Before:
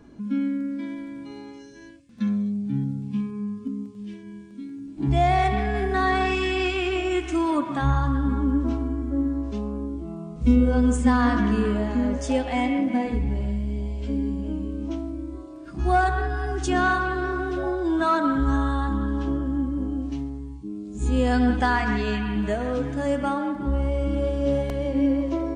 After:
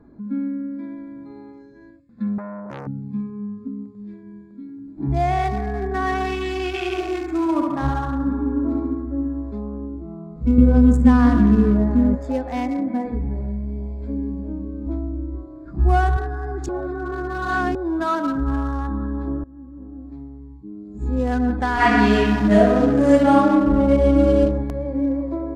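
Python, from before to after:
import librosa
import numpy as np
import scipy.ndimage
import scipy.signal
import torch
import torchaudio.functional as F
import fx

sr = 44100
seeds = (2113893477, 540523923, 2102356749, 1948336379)

y = fx.transformer_sat(x, sr, knee_hz=1500.0, at=(2.38, 2.87))
y = fx.echo_feedback(y, sr, ms=70, feedback_pct=58, wet_db=-3, at=(6.73, 9.05), fade=0.02)
y = fx.peak_eq(y, sr, hz=120.0, db=12.0, octaves=2.4, at=(10.58, 12.15))
y = fx.low_shelf(y, sr, hz=140.0, db=11.0, at=(14.86, 16.17))
y = fx.reverb_throw(y, sr, start_s=21.74, length_s=2.67, rt60_s=0.84, drr_db=-10.0)
y = fx.edit(y, sr, fx.reverse_span(start_s=16.69, length_s=1.06),
    fx.fade_in_from(start_s=19.44, length_s=1.71, floor_db=-20.5), tone=tone)
y = fx.wiener(y, sr, points=15)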